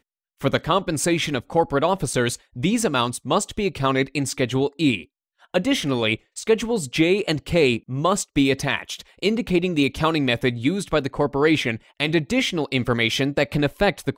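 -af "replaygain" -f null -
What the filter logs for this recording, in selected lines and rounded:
track_gain = +1.7 dB
track_peak = 0.312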